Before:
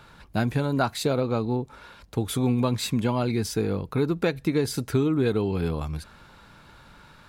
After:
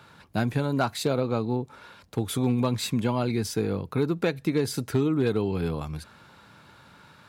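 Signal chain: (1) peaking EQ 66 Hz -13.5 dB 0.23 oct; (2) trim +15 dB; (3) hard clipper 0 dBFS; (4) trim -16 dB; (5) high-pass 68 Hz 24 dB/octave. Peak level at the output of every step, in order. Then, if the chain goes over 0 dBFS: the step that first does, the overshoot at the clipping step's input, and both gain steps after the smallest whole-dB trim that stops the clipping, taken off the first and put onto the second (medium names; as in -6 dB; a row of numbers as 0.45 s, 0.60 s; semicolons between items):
-11.0 dBFS, +4.0 dBFS, 0.0 dBFS, -16.0 dBFS, -11.0 dBFS; step 2, 4.0 dB; step 2 +11 dB, step 4 -12 dB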